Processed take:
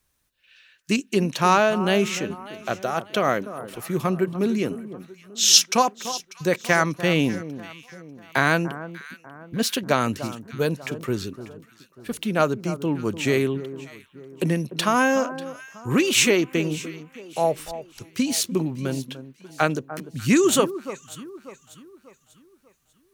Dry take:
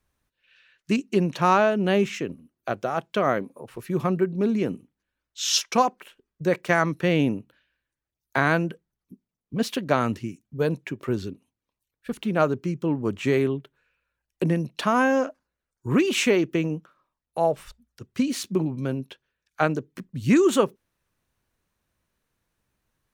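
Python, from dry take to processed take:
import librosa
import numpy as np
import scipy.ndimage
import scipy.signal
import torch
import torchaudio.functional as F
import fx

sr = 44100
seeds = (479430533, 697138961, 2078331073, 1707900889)

y = fx.high_shelf(x, sr, hz=3000.0, db=11.5)
y = fx.echo_alternate(y, sr, ms=296, hz=1400.0, feedback_pct=61, wet_db=-13)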